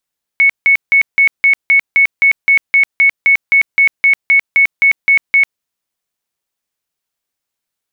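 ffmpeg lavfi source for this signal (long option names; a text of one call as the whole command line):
ffmpeg -f lavfi -i "aevalsrc='0.531*sin(2*PI*2210*mod(t,0.26))*lt(mod(t,0.26),211/2210)':duration=5.2:sample_rate=44100" out.wav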